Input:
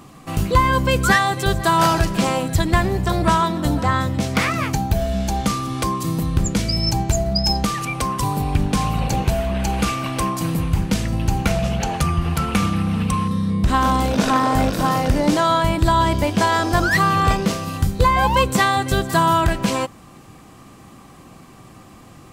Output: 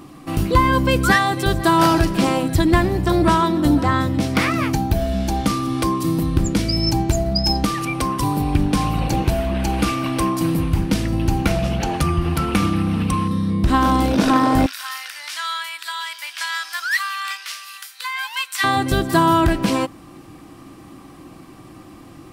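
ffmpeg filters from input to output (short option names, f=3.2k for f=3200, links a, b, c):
-filter_complex "[0:a]asettb=1/sr,asplit=3[a][b][c];[a]atrim=end=14.664[d];[b]atrim=start=14.66:end=18.64,asetpts=PTS-STARTPTS,afade=t=in:d=0.004:c=qsin,afade=t=out:st=3.976:d=0.004:c=qsin,highpass=f=1.5k:w=0.5412,highpass=f=1.5k:w=1.3066[e];[c]atrim=start=18.636[f];[d][e]acrossfade=d=0.004:c1=hsin:c2=qsin[g];[g][f]acrossfade=d=0.004:c1=qsin:c2=hsin,superequalizer=6b=2.51:15b=0.631"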